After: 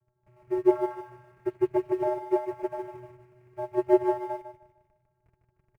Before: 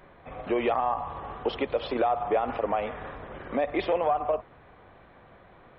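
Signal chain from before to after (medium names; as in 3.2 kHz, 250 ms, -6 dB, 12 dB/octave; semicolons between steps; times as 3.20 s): spectral contrast enhancement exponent 2.3; vocoder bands 8, square 123 Hz; in parallel at -9.5 dB: Schmitt trigger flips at -43 dBFS; on the sum: resonant high shelf 2.9 kHz -7.5 dB, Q 3; comb of notches 260 Hz; on a send: feedback delay 152 ms, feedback 51%, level -4 dB; on the sum: upward expansion 2.5:1, over -35 dBFS; trim +3.5 dB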